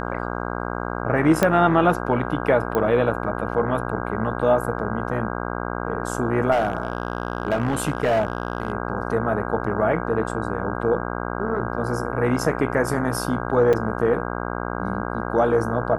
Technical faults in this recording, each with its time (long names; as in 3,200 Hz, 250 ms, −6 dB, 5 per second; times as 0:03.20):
mains buzz 60 Hz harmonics 27 −28 dBFS
0:01.43: click −4 dBFS
0:02.75: click −11 dBFS
0:06.51–0:08.72: clipping −15.5 dBFS
0:13.73–0:13.74: drop-out 5.3 ms